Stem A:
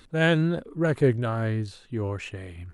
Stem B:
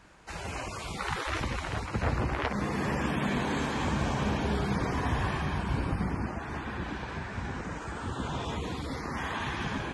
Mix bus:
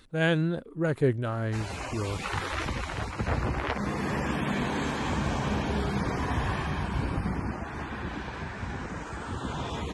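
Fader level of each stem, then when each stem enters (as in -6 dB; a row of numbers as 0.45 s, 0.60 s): -3.5 dB, +0.5 dB; 0.00 s, 1.25 s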